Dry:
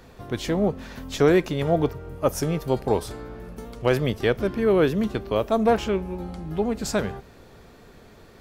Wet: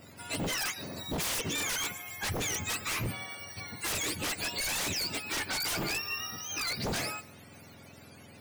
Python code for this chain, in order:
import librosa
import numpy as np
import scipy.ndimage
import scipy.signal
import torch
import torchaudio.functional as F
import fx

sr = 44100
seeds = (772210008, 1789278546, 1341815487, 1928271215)

y = fx.octave_mirror(x, sr, pivot_hz=1000.0)
y = y + 10.0 ** (-23.5 / 20.0) * np.pad(y, (int(155 * sr / 1000.0), 0))[:len(y)]
y = 10.0 ** (-27.5 / 20.0) * (np.abs((y / 10.0 ** (-27.5 / 20.0) + 3.0) % 4.0 - 2.0) - 1.0)